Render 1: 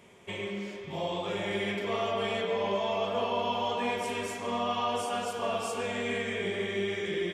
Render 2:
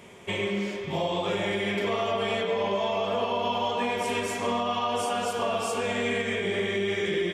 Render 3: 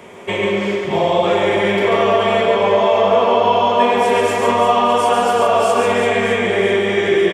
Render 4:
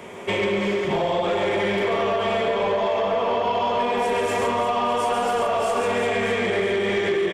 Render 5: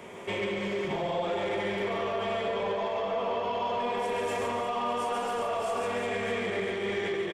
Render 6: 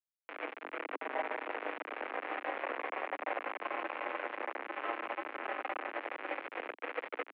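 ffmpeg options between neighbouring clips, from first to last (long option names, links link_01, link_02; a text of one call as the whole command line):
ffmpeg -i in.wav -af "alimiter=level_in=2dB:limit=-24dB:level=0:latency=1:release=184,volume=-2dB,volume=7.5dB" out.wav
ffmpeg -i in.wav -filter_complex "[0:a]acrossover=split=280|1900[link_01][link_02][link_03];[link_02]acontrast=88[link_04];[link_01][link_04][link_03]amix=inputs=3:normalize=0,aecho=1:1:140|336|610.4|994.6|1532:0.631|0.398|0.251|0.158|0.1,volume=5dB" out.wav
ffmpeg -i in.wav -af "acompressor=threshold=-17dB:ratio=6,asoftclip=type=tanh:threshold=-15.5dB" out.wav
ffmpeg -i in.wav -filter_complex "[0:a]alimiter=limit=-19.5dB:level=0:latency=1,asplit=2[link_01][link_02];[link_02]aecho=0:1:146:0.376[link_03];[link_01][link_03]amix=inputs=2:normalize=0,volume=-6dB" out.wav
ffmpeg -i in.wav -af "flanger=delay=4.7:depth=3.3:regen=-71:speed=0.67:shape=sinusoidal,acrusher=bits=4:mix=0:aa=0.000001,highpass=frequency=190:width_type=q:width=0.5412,highpass=frequency=190:width_type=q:width=1.307,lowpass=frequency=2400:width_type=q:width=0.5176,lowpass=frequency=2400:width_type=q:width=0.7071,lowpass=frequency=2400:width_type=q:width=1.932,afreqshift=98,volume=-1.5dB" out.wav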